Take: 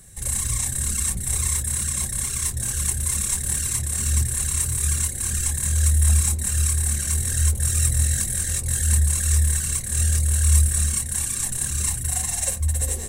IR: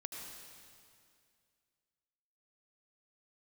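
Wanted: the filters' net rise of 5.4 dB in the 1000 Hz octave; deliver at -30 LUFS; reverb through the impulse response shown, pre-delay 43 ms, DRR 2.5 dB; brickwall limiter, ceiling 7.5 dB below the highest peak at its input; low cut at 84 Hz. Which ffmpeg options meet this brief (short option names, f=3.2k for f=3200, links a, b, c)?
-filter_complex "[0:a]highpass=84,equalizer=f=1k:t=o:g=6.5,alimiter=limit=-13.5dB:level=0:latency=1,asplit=2[a][b];[1:a]atrim=start_sample=2205,adelay=43[c];[b][c]afir=irnorm=-1:irlink=0,volume=-1dB[d];[a][d]amix=inputs=2:normalize=0,volume=-8.5dB"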